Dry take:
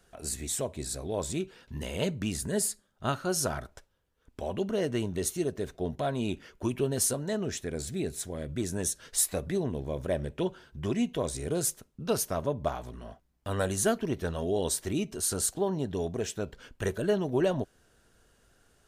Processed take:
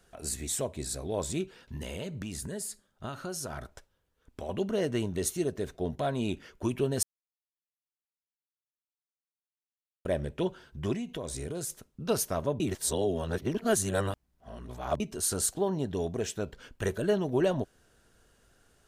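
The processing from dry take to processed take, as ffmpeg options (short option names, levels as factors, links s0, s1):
-filter_complex "[0:a]asettb=1/sr,asplit=3[s0][s1][s2];[s0]atrim=end=1.584[s3];[s1]atrim=start=1.58:end=4.49,asetpts=PTS-STARTPTS,afade=t=in:d=0.004:c=qsin,afade=t=out:st=2.906:d=0.004:c=qsin,acompressor=threshold=0.0224:ratio=6:attack=3.2:release=140:knee=1:detection=peak[s4];[s2]atrim=start=4.486[s5];[s3][s4]acrossfade=d=0.004:c1=hsin:c2=qsin[s6];[s6][s5]acrossfade=d=0.004:c1=qsin:c2=hsin,asettb=1/sr,asplit=3[s7][s8][s9];[s7]atrim=end=10.954[s10];[s8]atrim=start=10.95:end=11.7,asetpts=PTS-STARTPTS,afade=t=in:d=0.004:c=qsin,afade=t=out:st=0.746:d=0.004:c=qsin,acompressor=threshold=0.0251:ratio=6:attack=3.2:release=140:knee=1:detection=peak[s11];[s9]atrim=start=11.696[s12];[s10][s11]acrossfade=d=0.004:c1=hsin:c2=qsin[s13];[s13][s12]acrossfade=d=0.004:c1=qsin:c2=hsin,asplit=5[s14][s15][s16][s17][s18];[s14]atrim=end=7.03,asetpts=PTS-STARTPTS,afade=t=out:st=7.026:d=0.004:c=hsin[s19];[s15]atrim=start=7.03:end=10.05,asetpts=PTS-STARTPTS,volume=0[s20];[s16]atrim=start=10.05:end=12.602,asetpts=PTS-STARTPTS,afade=t=in:d=0.004:c=hsin[s21];[s17]atrim=start=12.598:end=15.002,asetpts=PTS-STARTPTS,areverse[s22];[s18]atrim=start=14.998[s23];[s19][s20][s21]concat=n=3:v=0:a=1[s24];[s24][s22]acrossfade=d=0.004:c1=hsin:c2=hsin[s25];[s25][s23]acrossfade=d=0.004:c1=hsin:c2=hsin"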